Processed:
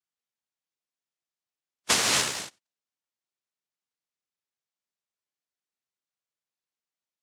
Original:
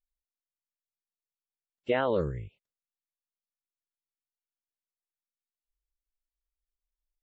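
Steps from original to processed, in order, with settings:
cochlear-implant simulation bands 1
0:01.96–0:02.36: background noise white −60 dBFS
level +3 dB

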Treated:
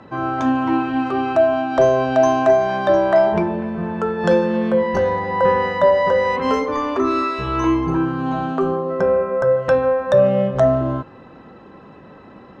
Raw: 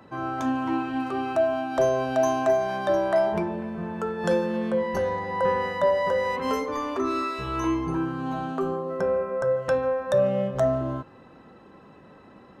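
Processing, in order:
high-frequency loss of the air 95 metres
level +8 dB

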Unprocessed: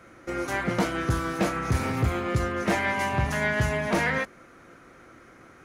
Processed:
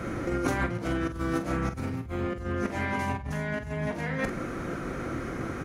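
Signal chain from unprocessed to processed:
low-shelf EQ 470 Hz +11 dB
compressor whose output falls as the input rises −32 dBFS, ratio −1
double-tracking delay 45 ms −9.5 dB

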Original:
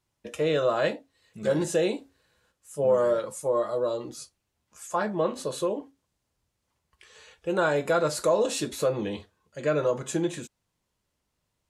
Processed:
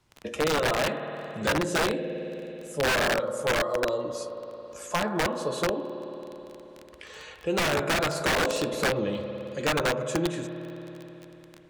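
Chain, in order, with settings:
surface crackle 17 per second −37 dBFS
spring reverb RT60 2.5 s, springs 54 ms, chirp 45 ms, DRR 7 dB
wrap-around overflow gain 18 dB
high-shelf EQ 7,300 Hz −10.5 dB
multiband upward and downward compressor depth 40%

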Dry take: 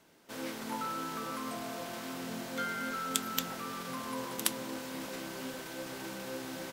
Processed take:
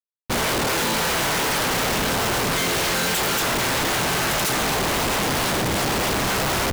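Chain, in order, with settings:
leveller curve on the samples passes 5
gate on every frequency bin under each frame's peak −10 dB weak
comparator with hysteresis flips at −33 dBFS
level +5 dB

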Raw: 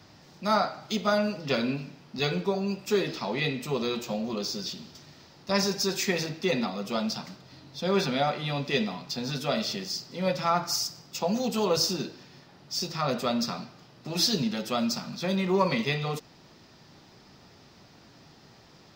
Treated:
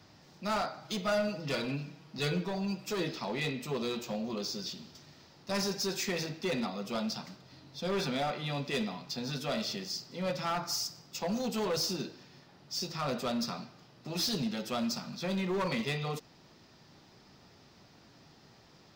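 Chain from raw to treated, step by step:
hard clipping −23.5 dBFS, distortion −12 dB
0:00.84–0:03.09: comb filter 6.3 ms, depth 55%
level −4.5 dB

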